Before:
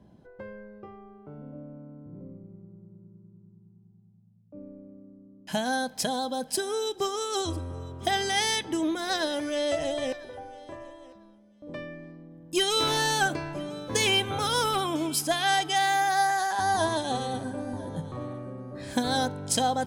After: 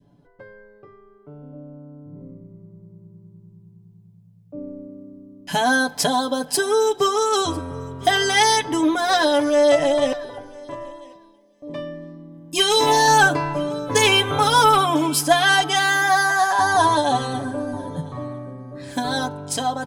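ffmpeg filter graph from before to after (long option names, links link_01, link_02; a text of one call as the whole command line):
ffmpeg -i in.wav -filter_complex "[0:a]asettb=1/sr,asplit=3[link_01][link_02][link_03];[link_01]atrim=end=11.004[link_04];[link_02]atrim=start=11:end=13.08,asetpts=PTS-STARTPTS,afade=type=in:duration=0.004:curve=qsin,afade=type=out:start_time=2.076:duration=0.004:curve=qsin,asuperstop=centerf=1400:order=12:qfactor=6,lowshelf=frequency=190:gain=-6.5,asplit=2[link_05][link_06];[link_06]adelay=37,volume=-13dB[link_07];[link_05][link_07]amix=inputs=2:normalize=0,atrim=end_sample=91728[link_08];[link_03]atrim=start=13.076[link_09];[link_04][link_08]acrossfade=duration=0.004:curve1=hsin:curve2=qsin[link_10];[link_10][link_09]acrossfade=duration=0.004:curve1=qsin:curve2=hsin,adynamicequalizer=threshold=0.0112:dfrequency=920:dqfactor=0.94:tfrequency=920:tqfactor=0.94:attack=5:release=100:ratio=0.375:range=3.5:mode=boostabove:tftype=bell,aecho=1:1:7:0.84,dynaudnorm=framelen=680:gausssize=9:maxgain=11.5dB,volume=-2.5dB" out.wav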